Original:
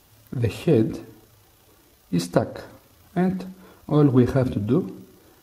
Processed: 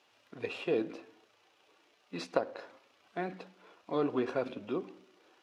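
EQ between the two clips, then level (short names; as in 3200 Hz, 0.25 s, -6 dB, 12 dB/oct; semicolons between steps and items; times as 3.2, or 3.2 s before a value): BPF 440–4300 Hz; bell 2600 Hz +5.5 dB 0.49 oct; -7.0 dB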